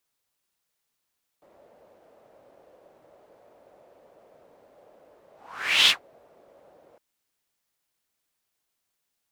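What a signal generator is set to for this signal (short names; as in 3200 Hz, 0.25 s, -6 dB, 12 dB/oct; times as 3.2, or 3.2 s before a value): whoosh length 5.56 s, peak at 4.47, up 0.61 s, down 0.12 s, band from 570 Hz, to 3300 Hz, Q 3.8, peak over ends 39 dB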